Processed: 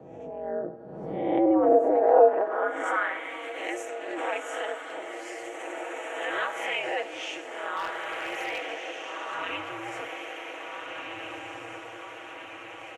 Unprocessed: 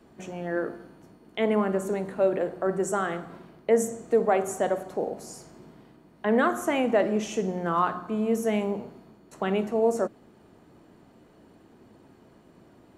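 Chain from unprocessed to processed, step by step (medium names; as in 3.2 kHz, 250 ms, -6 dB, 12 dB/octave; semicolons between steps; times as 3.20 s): reverse spectral sustain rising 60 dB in 0.51 s; high-pass sweep 550 Hz -> 120 Hz, 8.69–10.19 s; echo that smears into a reverb 1698 ms, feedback 50%, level -3 dB; in parallel at +1.5 dB: compression, threshold -29 dBFS, peak gain reduction 18 dB; on the sum: band-pass sweep 250 Hz -> 2.6 kHz, 1.05–3.41 s; ring modulator 110 Hz; comb 6.2 ms, depth 47%; 7.76–8.67 s: overload inside the chain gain 29 dB; swell ahead of each attack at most 41 dB/s; trim +3 dB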